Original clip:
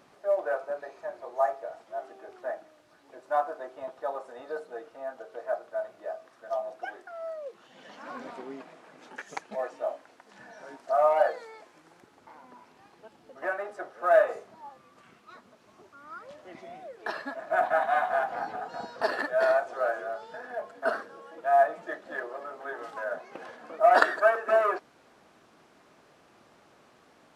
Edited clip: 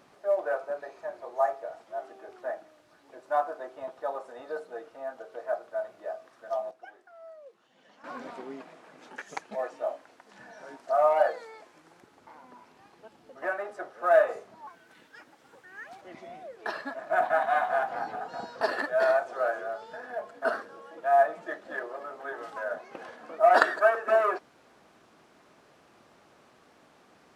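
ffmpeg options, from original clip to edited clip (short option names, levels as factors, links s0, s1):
-filter_complex "[0:a]asplit=5[s0][s1][s2][s3][s4];[s0]atrim=end=6.712[s5];[s1]atrim=start=6.708:end=8.042,asetpts=PTS-STARTPTS,volume=0.299[s6];[s2]atrim=start=8.038:end=14.674[s7];[s3]atrim=start=14.67:end=16.42,asetpts=PTS-STARTPTS,asetrate=57330,aresample=44100,atrim=end_sample=59365,asetpts=PTS-STARTPTS[s8];[s4]atrim=start=16.416[s9];[s5][s6]acrossfade=d=0.004:c1=hsin:c2=hsin[s10];[s10][s7]acrossfade=d=0.004:c1=hsin:c2=hsin[s11];[s11][s8]acrossfade=d=0.004:c1=hsin:c2=hsin[s12];[s12][s9]acrossfade=d=0.004:c1=hsin:c2=hsin"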